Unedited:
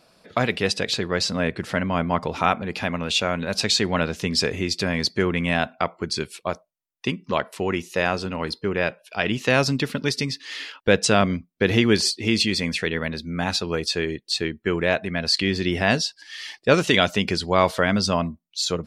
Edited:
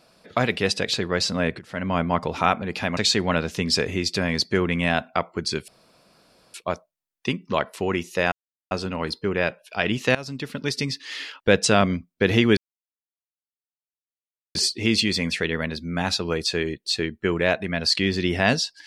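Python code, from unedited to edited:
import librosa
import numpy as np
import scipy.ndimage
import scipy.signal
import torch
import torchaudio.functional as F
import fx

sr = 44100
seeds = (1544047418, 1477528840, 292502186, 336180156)

y = fx.edit(x, sr, fx.fade_in_from(start_s=1.59, length_s=0.3, curve='qua', floor_db=-14.5),
    fx.cut(start_s=2.97, length_s=0.65),
    fx.insert_room_tone(at_s=6.33, length_s=0.86),
    fx.insert_silence(at_s=8.11, length_s=0.39),
    fx.fade_in_from(start_s=9.55, length_s=0.75, floor_db=-19.5),
    fx.insert_silence(at_s=11.97, length_s=1.98), tone=tone)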